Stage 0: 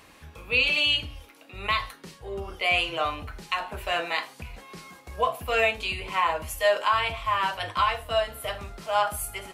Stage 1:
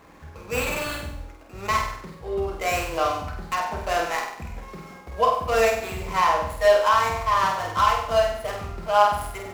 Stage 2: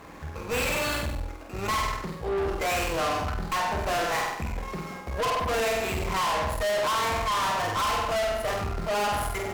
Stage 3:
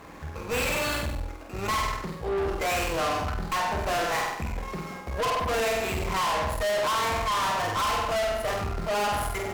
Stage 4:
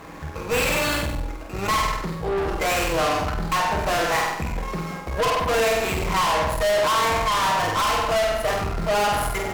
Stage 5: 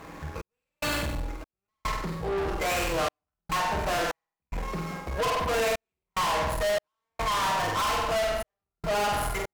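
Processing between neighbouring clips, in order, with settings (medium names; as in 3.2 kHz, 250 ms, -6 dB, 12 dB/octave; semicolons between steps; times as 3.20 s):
median filter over 15 samples; hum notches 50/100 Hz; flutter echo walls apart 8.3 m, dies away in 0.64 s; trim +4 dB
valve stage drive 32 dB, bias 0.55; trim +7.5 dB
no audible change
simulated room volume 2200 m³, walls furnished, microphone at 0.6 m; trim +5 dB
trance gate "xx..xxx..xxxx" 73 bpm -60 dB; in parallel at -4 dB: hard clipper -24.5 dBFS, distortion -10 dB; on the sum: trim -8 dB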